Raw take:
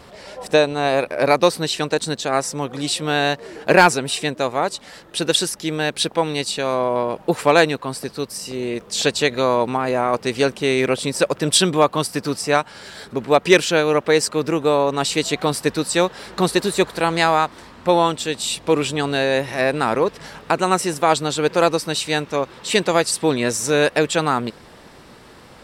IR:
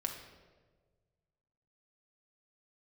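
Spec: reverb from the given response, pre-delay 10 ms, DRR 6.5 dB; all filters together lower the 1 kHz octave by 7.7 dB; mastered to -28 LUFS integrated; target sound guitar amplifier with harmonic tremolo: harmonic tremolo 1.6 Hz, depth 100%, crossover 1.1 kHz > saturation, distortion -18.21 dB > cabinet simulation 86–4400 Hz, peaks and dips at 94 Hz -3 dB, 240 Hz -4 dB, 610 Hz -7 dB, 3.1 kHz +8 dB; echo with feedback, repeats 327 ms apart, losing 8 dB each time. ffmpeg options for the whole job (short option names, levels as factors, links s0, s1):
-filter_complex "[0:a]equalizer=f=1000:t=o:g=-9,aecho=1:1:327|654|981|1308|1635:0.398|0.159|0.0637|0.0255|0.0102,asplit=2[s0][s1];[1:a]atrim=start_sample=2205,adelay=10[s2];[s1][s2]afir=irnorm=-1:irlink=0,volume=0.422[s3];[s0][s3]amix=inputs=2:normalize=0,acrossover=split=1100[s4][s5];[s4]aeval=exprs='val(0)*(1-1/2+1/2*cos(2*PI*1.6*n/s))':c=same[s6];[s5]aeval=exprs='val(0)*(1-1/2-1/2*cos(2*PI*1.6*n/s))':c=same[s7];[s6][s7]amix=inputs=2:normalize=0,asoftclip=threshold=0.282,highpass=86,equalizer=f=94:t=q:w=4:g=-3,equalizer=f=240:t=q:w=4:g=-4,equalizer=f=610:t=q:w=4:g=-7,equalizer=f=3100:t=q:w=4:g=8,lowpass=f=4400:w=0.5412,lowpass=f=4400:w=1.3066,volume=0.75"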